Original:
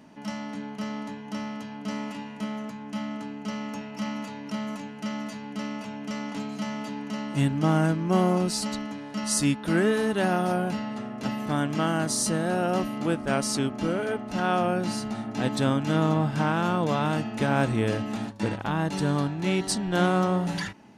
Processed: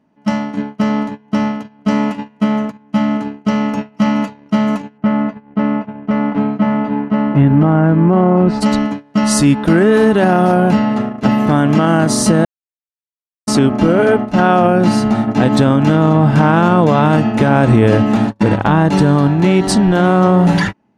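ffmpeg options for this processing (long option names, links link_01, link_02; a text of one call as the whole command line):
ffmpeg -i in.wav -filter_complex "[0:a]asplit=3[link_01][link_02][link_03];[link_01]afade=type=out:start_time=4.97:duration=0.02[link_04];[link_02]lowpass=1900,afade=type=in:start_time=4.97:duration=0.02,afade=type=out:start_time=8.6:duration=0.02[link_05];[link_03]afade=type=in:start_time=8.6:duration=0.02[link_06];[link_04][link_05][link_06]amix=inputs=3:normalize=0,asplit=3[link_07][link_08][link_09];[link_07]atrim=end=12.45,asetpts=PTS-STARTPTS,afade=type=out:start_time=12.446:duration=0.004:curve=hsin[link_10];[link_08]atrim=start=12.45:end=13.47,asetpts=PTS-STARTPTS,volume=0[link_11];[link_09]atrim=start=13.47,asetpts=PTS-STARTPTS,afade=type=in:duration=0.004:curve=hsin[link_12];[link_10][link_11][link_12]concat=n=3:v=0:a=1,agate=range=-26dB:threshold=-34dB:ratio=16:detection=peak,highshelf=frequency=2700:gain=-12,alimiter=level_in=19.5dB:limit=-1dB:release=50:level=0:latency=1,volume=-1dB" out.wav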